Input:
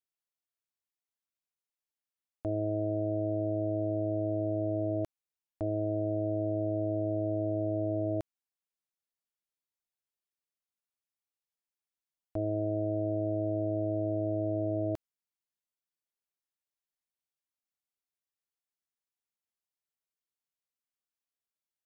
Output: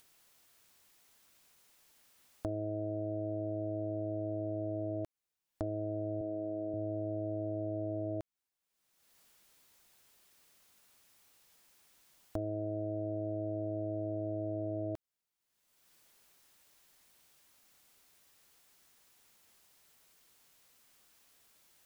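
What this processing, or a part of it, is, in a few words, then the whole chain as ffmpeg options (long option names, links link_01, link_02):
upward and downward compression: -filter_complex "[0:a]acompressor=mode=upward:threshold=-52dB:ratio=2.5,acompressor=threshold=-38dB:ratio=6,asettb=1/sr,asplit=3[link_01][link_02][link_03];[link_01]atrim=end=6.214[link_04];[link_02]atrim=start=6.21:end=6.74,asetpts=PTS-STARTPTS,afade=type=in:duration=0.004:curve=qsin,afade=type=out:start_time=0.526:duration=0.004:curve=qsin,highpass=170[link_05];[link_03]atrim=start=6.736[link_06];[link_04][link_05]acrossfade=duration=0.004:curve1=hsin:curve2=qsin[link_07];[link_07][link_06]acrossfade=duration=0.004:curve1=qsin:curve2=hsin,volume=4dB"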